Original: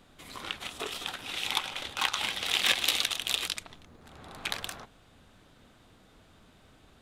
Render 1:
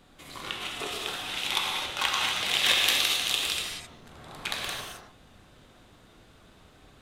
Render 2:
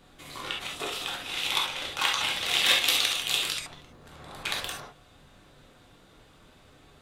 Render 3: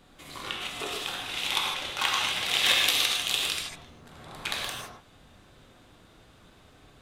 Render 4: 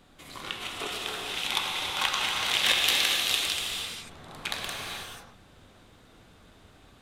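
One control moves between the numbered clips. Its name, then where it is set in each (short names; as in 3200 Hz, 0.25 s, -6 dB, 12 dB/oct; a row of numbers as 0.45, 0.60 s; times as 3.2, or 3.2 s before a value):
non-linear reverb, gate: 290, 90, 180, 520 ms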